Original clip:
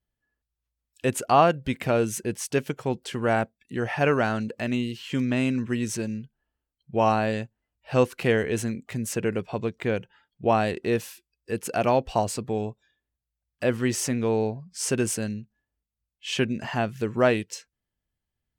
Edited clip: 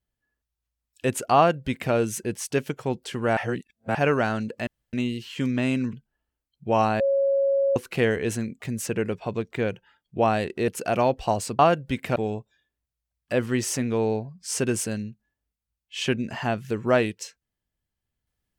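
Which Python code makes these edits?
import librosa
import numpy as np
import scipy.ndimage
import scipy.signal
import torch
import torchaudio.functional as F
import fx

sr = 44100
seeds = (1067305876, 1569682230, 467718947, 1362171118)

y = fx.edit(x, sr, fx.duplicate(start_s=1.36, length_s=0.57, to_s=12.47),
    fx.reverse_span(start_s=3.37, length_s=0.58),
    fx.insert_room_tone(at_s=4.67, length_s=0.26),
    fx.cut(start_s=5.67, length_s=0.53),
    fx.bleep(start_s=7.27, length_s=0.76, hz=551.0, db=-18.5),
    fx.cut(start_s=10.95, length_s=0.61), tone=tone)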